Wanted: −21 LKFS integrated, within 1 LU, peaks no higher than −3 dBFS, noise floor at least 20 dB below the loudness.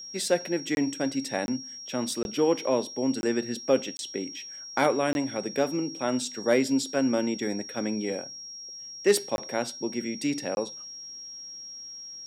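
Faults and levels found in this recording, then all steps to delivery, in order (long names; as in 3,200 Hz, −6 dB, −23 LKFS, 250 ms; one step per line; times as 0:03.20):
number of dropouts 8; longest dropout 21 ms; interfering tone 5,600 Hz; level of the tone −39 dBFS; integrated loudness −29.0 LKFS; sample peak −9.0 dBFS; target loudness −21.0 LKFS
→ repair the gap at 0:00.75/0:01.46/0:02.23/0:03.21/0:03.97/0:05.13/0:09.36/0:10.55, 21 ms
notch filter 5,600 Hz, Q 30
level +8 dB
brickwall limiter −3 dBFS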